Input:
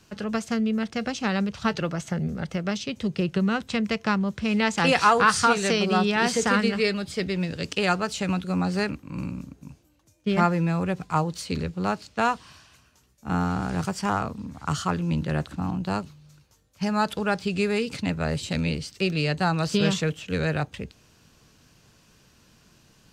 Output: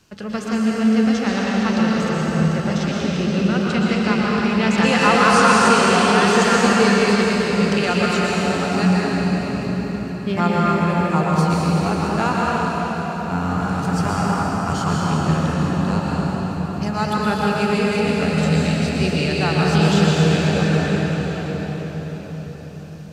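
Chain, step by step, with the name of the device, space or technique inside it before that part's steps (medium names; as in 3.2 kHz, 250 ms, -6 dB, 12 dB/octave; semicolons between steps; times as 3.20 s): cathedral (reverberation RT60 5.9 s, pre-delay 110 ms, DRR -6 dB)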